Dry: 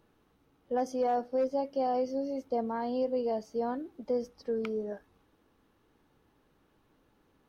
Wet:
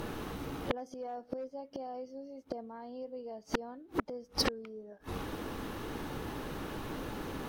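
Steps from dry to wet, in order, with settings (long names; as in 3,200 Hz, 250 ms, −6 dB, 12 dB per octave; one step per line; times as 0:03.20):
gate with flip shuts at −34 dBFS, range −41 dB
in parallel at −3 dB: sine wavefolder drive 16 dB, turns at −31.5 dBFS
on the sum: level +10.5 dB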